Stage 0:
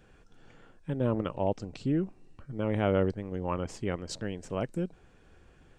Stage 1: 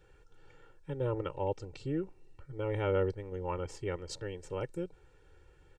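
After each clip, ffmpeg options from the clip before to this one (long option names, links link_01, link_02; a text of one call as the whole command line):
ffmpeg -i in.wav -af "aecho=1:1:2.2:0.94,volume=-6.5dB" out.wav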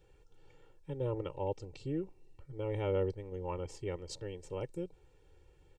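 ffmpeg -i in.wav -af "equalizer=frequency=1500:width_type=o:width=0.58:gain=-10,volume=-2dB" out.wav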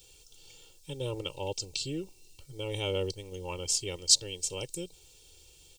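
ffmpeg -i in.wav -af "aexciter=amount=15.5:drive=4.5:freq=2800" out.wav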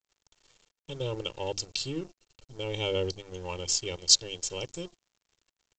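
ffmpeg -i in.wav -af "bandreject=frequency=50:width_type=h:width=6,bandreject=frequency=100:width_type=h:width=6,bandreject=frequency=150:width_type=h:width=6,bandreject=frequency=200:width_type=h:width=6,bandreject=frequency=250:width_type=h:width=6,bandreject=frequency=300:width_type=h:width=6,bandreject=frequency=350:width_type=h:width=6,aresample=16000,aeval=exprs='sgn(val(0))*max(abs(val(0))-0.00282,0)':channel_layout=same,aresample=44100,volume=3dB" out.wav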